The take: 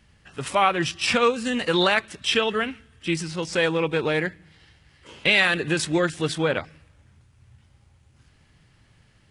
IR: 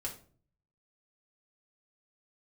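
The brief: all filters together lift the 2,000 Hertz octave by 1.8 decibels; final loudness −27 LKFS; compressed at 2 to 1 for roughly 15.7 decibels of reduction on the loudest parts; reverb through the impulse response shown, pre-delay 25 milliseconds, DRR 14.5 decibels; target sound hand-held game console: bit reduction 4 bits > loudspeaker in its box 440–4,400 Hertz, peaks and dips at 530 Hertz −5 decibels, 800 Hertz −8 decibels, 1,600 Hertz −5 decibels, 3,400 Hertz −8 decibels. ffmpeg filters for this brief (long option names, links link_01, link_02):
-filter_complex "[0:a]equalizer=frequency=2000:width_type=o:gain=5.5,acompressor=threshold=-41dB:ratio=2,asplit=2[link_01][link_02];[1:a]atrim=start_sample=2205,adelay=25[link_03];[link_02][link_03]afir=irnorm=-1:irlink=0,volume=-14.5dB[link_04];[link_01][link_04]amix=inputs=2:normalize=0,acrusher=bits=3:mix=0:aa=0.000001,highpass=440,equalizer=frequency=530:width_type=q:width=4:gain=-5,equalizer=frequency=800:width_type=q:width=4:gain=-8,equalizer=frequency=1600:width_type=q:width=4:gain=-5,equalizer=frequency=3400:width_type=q:width=4:gain=-8,lowpass=frequency=4400:width=0.5412,lowpass=frequency=4400:width=1.3066,volume=15.5dB"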